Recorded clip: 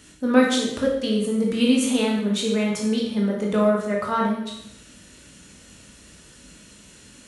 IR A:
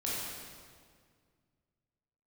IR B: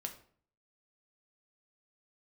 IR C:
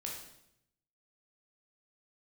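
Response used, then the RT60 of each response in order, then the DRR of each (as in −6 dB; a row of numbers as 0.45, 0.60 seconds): C; 1.9, 0.50, 0.75 seconds; −7.5, 3.5, −2.0 decibels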